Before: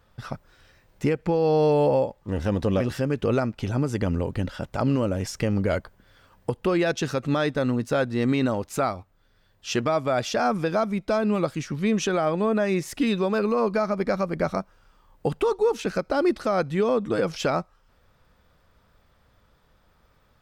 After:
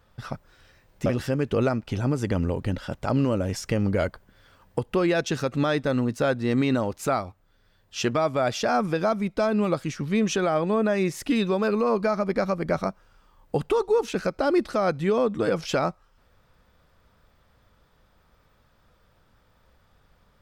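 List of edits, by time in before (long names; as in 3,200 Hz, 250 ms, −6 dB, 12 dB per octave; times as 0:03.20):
0:01.06–0:02.77: remove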